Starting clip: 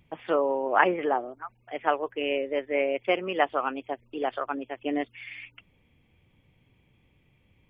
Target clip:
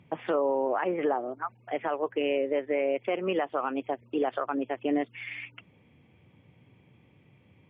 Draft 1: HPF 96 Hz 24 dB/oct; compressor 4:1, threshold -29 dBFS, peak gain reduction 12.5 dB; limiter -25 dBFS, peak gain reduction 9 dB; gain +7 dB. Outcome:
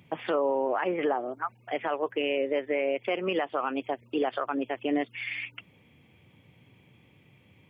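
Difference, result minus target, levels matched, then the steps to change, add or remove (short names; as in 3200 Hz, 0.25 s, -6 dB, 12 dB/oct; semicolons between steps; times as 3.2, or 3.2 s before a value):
2000 Hz band +3.0 dB
add after compressor: LPF 1700 Hz 6 dB/oct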